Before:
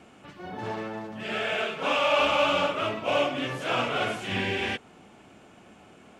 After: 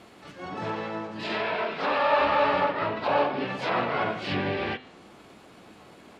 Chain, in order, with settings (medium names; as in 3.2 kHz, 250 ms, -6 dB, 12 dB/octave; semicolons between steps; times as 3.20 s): harmony voices +7 st -2 dB; de-hum 128.2 Hz, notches 33; low-pass that closes with the level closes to 1.9 kHz, closed at -23 dBFS